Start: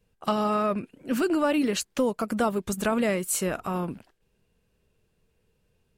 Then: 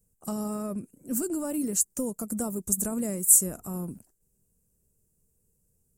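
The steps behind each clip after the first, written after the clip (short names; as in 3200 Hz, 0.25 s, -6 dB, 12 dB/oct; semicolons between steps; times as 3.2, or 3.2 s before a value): EQ curve 200 Hz 0 dB, 3500 Hz -21 dB, 7600 Hz +14 dB; gain -2.5 dB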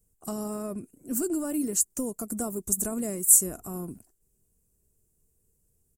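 comb 2.8 ms, depth 32%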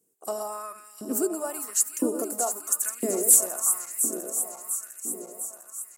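regenerating reverse delay 0.351 s, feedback 77%, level -8 dB; LFO high-pass saw up 0.99 Hz 280–2400 Hz; sine folder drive 3 dB, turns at -3 dBFS; gain -5 dB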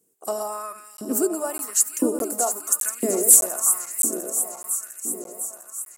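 crackling interface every 0.61 s, samples 512, zero, from 0.97; gain +4 dB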